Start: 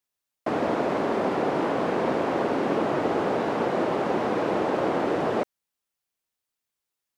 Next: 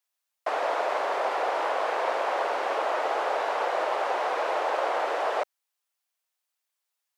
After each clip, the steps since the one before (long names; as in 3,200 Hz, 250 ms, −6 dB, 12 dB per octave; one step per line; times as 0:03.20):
high-pass filter 580 Hz 24 dB per octave
level +2 dB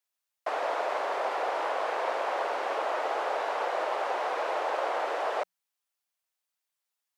mains-hum notches 60/120/180 Hz
level −3 dB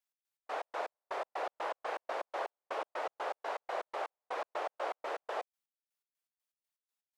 gate pattern "x.x.x.x..x.x." 122 BPM −60 dB
level −6 dB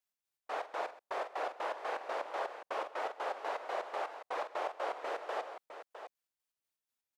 multi-tap delay 45/128/658 ms −11.5/−18/−10.5 dB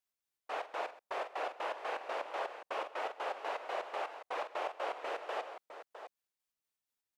dynamic equaliser 2,700 Hz, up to +5 dB, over −59 dBFS, Q 2.5
level −1 dB